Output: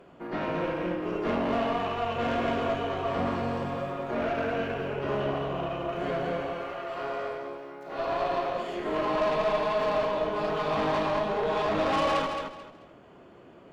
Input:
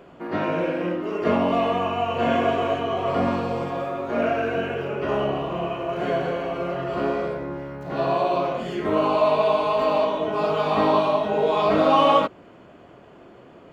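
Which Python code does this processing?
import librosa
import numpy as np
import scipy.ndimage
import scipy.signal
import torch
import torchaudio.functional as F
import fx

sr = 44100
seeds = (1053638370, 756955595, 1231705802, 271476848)

y = fx.highpass(x, sr, hz=fx.line((6.5, 670.0), (9.13, 250.0)), slope=12, at=(6.5, 9.13), fade=0.02)
y = fx.tube_stage(y, sr, drive_db=20.0, bias=0.55)
y = fx.echo_feedback(y, sr, ms=218, feedback_pct=26, wet_db=-6.0)
y = y * librosa.db_to_amplitude(-3.0)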